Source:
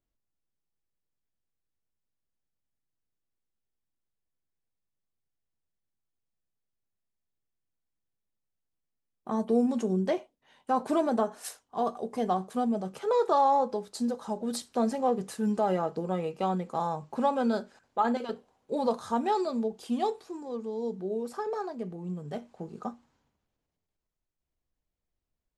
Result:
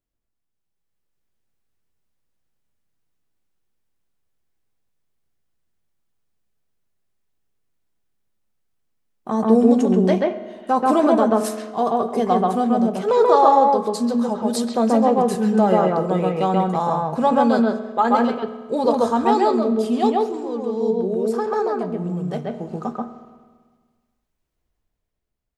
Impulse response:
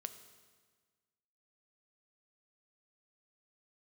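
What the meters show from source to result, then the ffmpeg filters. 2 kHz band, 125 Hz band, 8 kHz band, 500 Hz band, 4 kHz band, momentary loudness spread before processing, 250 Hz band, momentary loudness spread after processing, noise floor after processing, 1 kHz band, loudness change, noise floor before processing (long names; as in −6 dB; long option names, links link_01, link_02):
+11.0 dB, +11.5 dB, +8.0 dB, +11.0 dB, +9.0 dB, 12 LU, +11.5 dB, 11 LU, −76 dBFS, +10.5 dB, +11.0 dB, −84 dBFS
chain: -filter_complex "[0:a]dynaudnorm=framelen=140:gausssize=13:maxgain=8dB,asplit=2[link_01][link_02];[1:a]atrim=start_sample=2205,lowpass=2900,adelay=134[link_03];[link_02][link_03]afir=irnorm=-1:irlink=0,volume=3.5dB[link_04];[link_01][link_04]amix=inputs=2:normalize=0"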